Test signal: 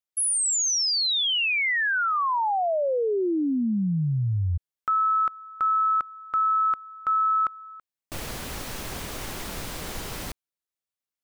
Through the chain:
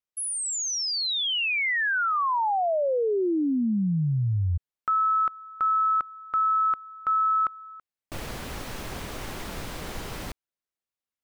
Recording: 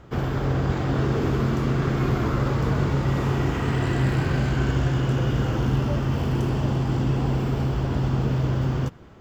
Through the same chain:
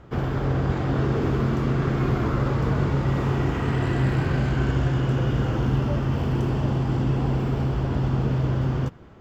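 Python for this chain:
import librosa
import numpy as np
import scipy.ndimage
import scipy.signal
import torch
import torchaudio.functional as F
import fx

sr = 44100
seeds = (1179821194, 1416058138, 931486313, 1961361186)

y = fx.high_shelf(x, sr, hz=4300.0, db=-7.0)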